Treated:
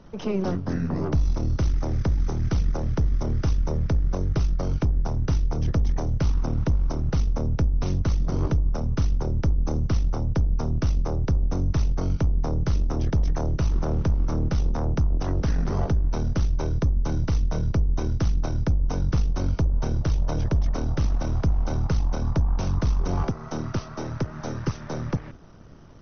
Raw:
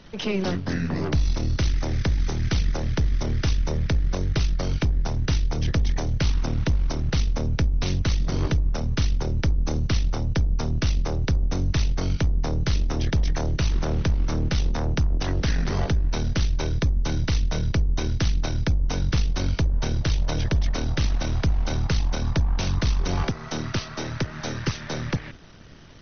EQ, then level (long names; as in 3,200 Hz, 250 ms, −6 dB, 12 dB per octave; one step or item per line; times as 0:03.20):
flat-topped bell 2,700 Hz −8.5 dB
high-shelf EQ 3,800 Hz −9 dB
0.0 dB